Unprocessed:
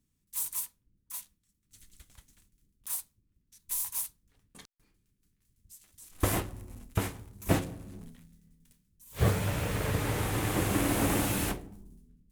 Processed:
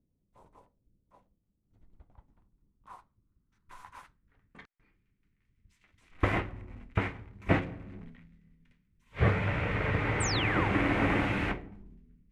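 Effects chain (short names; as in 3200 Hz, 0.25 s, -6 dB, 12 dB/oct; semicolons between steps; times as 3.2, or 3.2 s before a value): notch 1700 Hz, Q 20; low-pass sweep 590 Hz -> 2100 Hz, 1.23–4.91; painted sound fall, 10.2–10.69, 740–8900 Hz -35 dBFS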